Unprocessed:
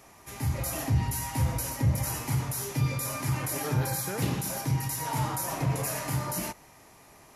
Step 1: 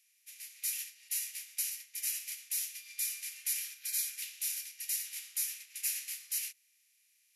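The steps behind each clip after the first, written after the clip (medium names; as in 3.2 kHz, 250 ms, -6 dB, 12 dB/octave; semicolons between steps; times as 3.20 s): spectral levelling over time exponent 0.6; steep high-pass 2.2 kHz 36 dB/octave; upward expansion 2.5:1, over -46 dBFS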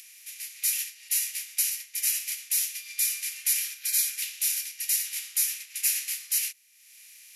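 upward compressor, threshold -48 dBFS; trim +9 dB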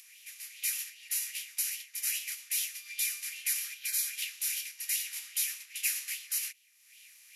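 sweeping bell 2.5 Hz 920–3300 Hz +10 dB; trim -6.5 dB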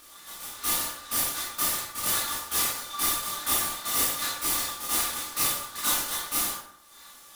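comb filter that takes the minimum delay 3.4 ms; ring modulator 1.2 kHz; reverberation RT60 0.75 s, pre-delay 12 ms, DRR -6.5 dB; trim +4.5 dB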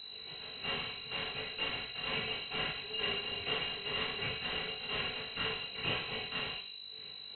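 resonant low shelf 730 Hz -8.5 dB, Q 1.5; mains buzz 50 Hz, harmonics 4, -45 dBFS -5 dB/octave; frequency inversion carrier 4 kHz; trim -4.5 dB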